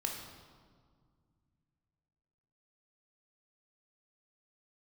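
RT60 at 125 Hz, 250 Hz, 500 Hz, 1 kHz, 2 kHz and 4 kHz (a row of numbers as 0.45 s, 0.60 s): 3.4 s, 2.9 s, 1.9 s, 1.8 s, 1.3 s, 1.2 s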